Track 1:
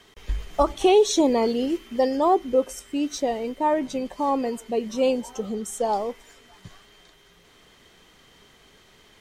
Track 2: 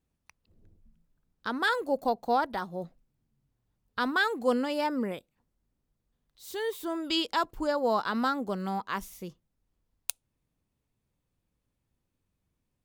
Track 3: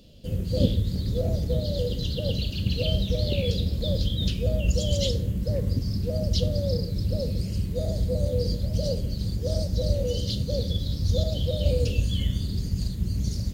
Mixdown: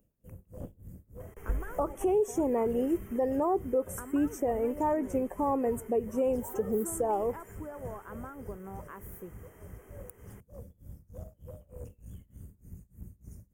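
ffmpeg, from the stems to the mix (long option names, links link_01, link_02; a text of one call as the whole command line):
ffmpeg -i stem1.wav -i stem2.wav -i stem3.wav -filter_complex "[0:a]adynamicequalizer=threshold=0.0316:dfrequency=360:dqfactor=0.72:tfrequency=360:tqfactor=0.72:attack=5:release=100:ratio=0.375:range=2.5:mode=cutabove:tftype=bell,adelay=1200,volume=-2dB[link_01];[1:a]acompressor=threshold=-36dB:ratio=6,volume=-6.5dB[link_02];[2:a]highshelf=frequency=4900:gain=10,aeval=exprs='clip(val(0),-1,0.0596)':channel_layout=same,tremolo=f=3.3:d=0.96,volume=-17dB[link_03];[link_01][link_02]amix=inputs=2:normalize=0,equalizer=frequency=400:width_type=o:width=0.67:gain=7,equalizer=frequency=4000:width_type=o:width=0.67:gain=3,equalizer=frequency=16000:width_type=o:width=0.67:gain=12,alimiter=limit=-20dB:level=0:latency=1:release=204,volume=0dB[link_04];[link_03][link_04]amix=inputs=2:normalize=0,asuperstop=centerf=4100:order=4:qfactor=0.6" out.wav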